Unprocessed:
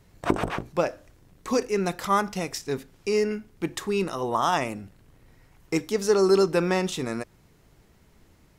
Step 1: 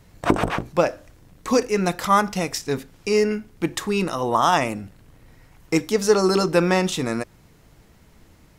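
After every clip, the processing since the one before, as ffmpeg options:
ffmpeg -i in.wav -af "bandreject=frequency=390:width=12,volume=5.5dB" out.wav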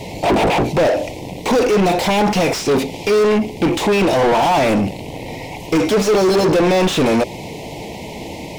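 ffmpeg -i in.wav -filter_complex "[0:a]asoftclip=type=tanh:threshold=-18.5dB,asuperstop=centerf=1400:order=8:qfactor=1.2,asplit=2[link_01][link_02];[link_02]highpass=frequency=720:poles=1,volume=35dB,asoftclip=type=tanh:threshold=-13dB[link_03];[link_01][link_03]amix=inputs=2:normalize=0,lowpass=frequency=1500:poles=1,volume=-6dB,volume=6dB" out.wav

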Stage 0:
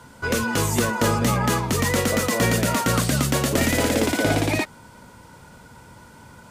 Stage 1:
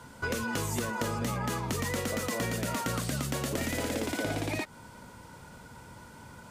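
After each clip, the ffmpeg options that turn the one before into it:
ffmpeg -i in.wav -af "acompressor=threshold=-26dB:ratio=6,volume=-3dB" out.wav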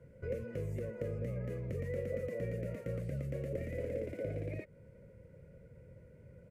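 ffmpeg -i in.wav -af "firequalizer=gain_entry='entry(160,0);entry(250,-12);entry(530,5);entry(820,-30);entry(2100,-9);entry(3400,-28);entry(7300,-27);entry(11000,-24)':delay=0.05:min_phase=1,volume=-3.5dB" out.wav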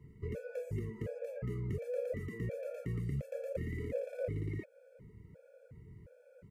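ffmpeg -i in.wav -af "afftfilt=real='re*gt(sin(2*PI*1.4*pts/sr)*(1-2*mod(floor(b*sr/1024/450),2)),0)':imag='im*gt(sin(2*PI*1.4*pts/sr)*(1-2*mod(floor(b*sr/1024/450),2)),0)':win_size=1024:overlap=0.75,volume=3dB" out.wav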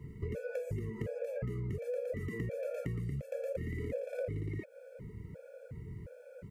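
ffmpeg -i in.wav -af "acompressor=threshold=-43dB:ratio=6,volume=8.5dB" out.wav

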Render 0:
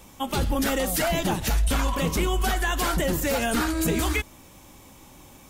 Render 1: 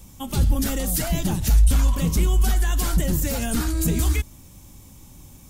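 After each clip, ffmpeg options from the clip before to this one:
ffmpeg -i in.wav -af "bass=frequency=250:gain=15,treble=frequency=4000:gain=10,volume=-7dB" out.wav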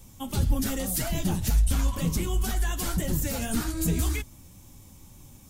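ffmpeg -i in.wav -af "flanger=delay=7:depth=4.8:regen=-39:speed=1.9:shape=triangular" out.wav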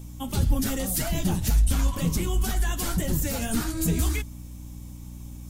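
ffmpeg -i in.wav -af "aeval=exprs='val(0)+0.01*(sin(2*PI*60*n/s)+sin(2*PI*2*60*n/s)/2+sin(2*PI*3*60*n/s)/3+sin(2*PI*4*60*n/s)/4+sin(2*PI*5*60*n/s)/5)':channel_layout=same,volume=1.5dB" out.wav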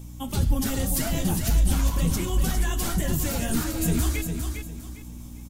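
ffmpeg -i in.wav -af "aecho=1:1:404|808|1212|1616:0.473|0.137|0.0398|0.0115" out.wav

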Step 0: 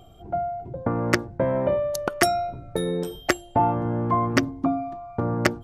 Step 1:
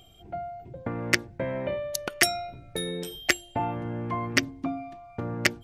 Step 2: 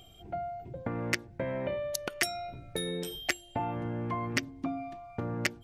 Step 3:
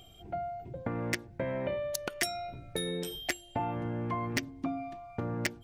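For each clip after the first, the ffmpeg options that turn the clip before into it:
ffmpeg -i in.wav -af "highshelf=frequency=1600:width_type=q:width=1.5:gain=9.5,volume=-7dB" out.wav
ffmpeg -i in.wav -af "acompressor=threshold=-32dB:ratio=2" out.wav
ffmpeg -i in.wav -af "volume=20.5dB,asoftclip=hard,volume=-20.5dB" out.wav

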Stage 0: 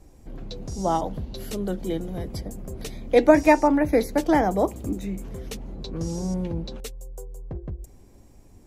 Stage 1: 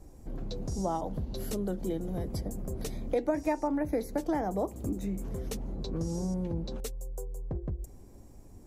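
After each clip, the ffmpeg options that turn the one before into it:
ffmpeg -i in.wav -af "equalizer=frequency=2800:width_type=o:width=1.7:gain=-7,acompressor=threshold=-30dB:ratio=3" out.wav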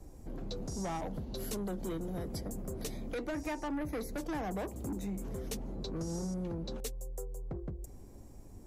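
ffmpeg -i in.wav -filter_complex "[0:a]acrossover=split=180|1700[link_01][link_02][link_03];[link_01]alimiter=level_in=14dB:limit=-24dB:level=0:latency=1,volume=-14dB[link_04];[link_02]asoftclip=type=tanh:threshold=-35.5dB[link_05];[link_04][link_05][link_03]amix=inputs=3:normalize=0" out.wav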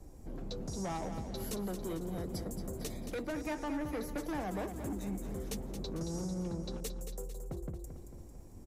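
ffmpeg -i in.wav -af "aecho=1:1:224|448|672|896|1120|1344:0.355|0.185|0.0959|0.0499|0.0259|0.0135,volume=-1dB" out.wav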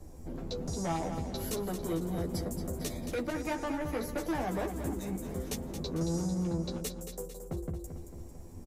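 ffmpeg -i in.wav -filter_complex "[0:a]asplit=2[link_01][link_02];[link_02]adelay=12,volume=-4dB[link_03];[link_01][link_03]amix=inputs=2:normalize=0,volume=3dB" out.wav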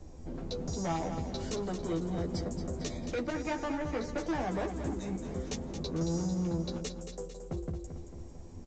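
ffmpeg -i in.wav -ar 16000 -c:a pcm_alaw out.wav

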